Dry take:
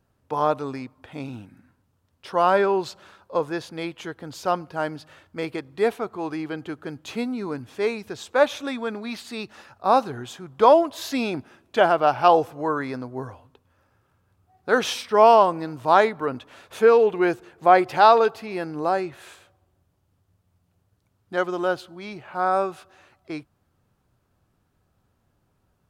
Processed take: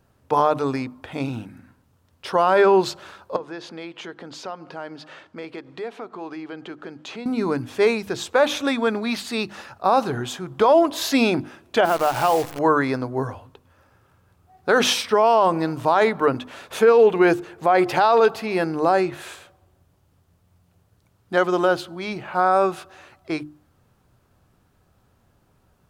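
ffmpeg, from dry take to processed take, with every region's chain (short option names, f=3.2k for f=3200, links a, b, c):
-filter_complex "[0:a]asettb=1/sr,asplit=3[a][b][c];[a]atrim=end=3.364[d];[b]atrim=start=3.36:end=7.26,asetpts=PTS-STARTPTS,afade=t=in:d=0.004:c=qsin,afade=t=out:st=3.896:d=0.004:c=qsin,acompressor=threshold=-41dB:ratio=3:attack=3.2:release=140:knee=1:detection=peak,highpass=200,lowpass=5.6k[e];[c]atrim=start=7.256[f];[d][e]acrossfade=d=0.004:c1=hsin:c2=qsin[g];[g][f]acrossfade=d=0.004:c1=qsin:c2=hsin,asettb=1/sr,asplit=3[h][i][j];[h]atrim=end=11.854[k];[i]atrim=start=11.85:end=12.59,asetpts=PTS-STARTPTS,afade=t=in:d=0.004:c=qsin,afade=t=out:st=0.736:d=0.004:c=qsin,acompressor=threshold=-26dB:ratio=2.5:attack=3.2:release=140:knee=1:detection=peak,acrusher=bits=7:dc=4:mix=0:aa=0.000001[l];[j]atrim=start=12.586[m];[k][l]acrossfade=d=0.004:c1=hsin:c2=qsin[n];[n][m]acrossfade=d=0.004:c1=qsin:c2=hsin,bandreject=f=50:t=h:w=6,bandreject=f=100:t=h:w=6,bandreject=f=150:t=h:w=6,bandreject=f=200:t=h:w=6,bandreject=f=250:t=h:w=6,bandreject=f=300:t=h:w=6,bandreject=f=350:t=h:w=6,alimiter=level_in=14dB:limit=-1dB:release=50:level=0:latency=1,volume=-6.5dB"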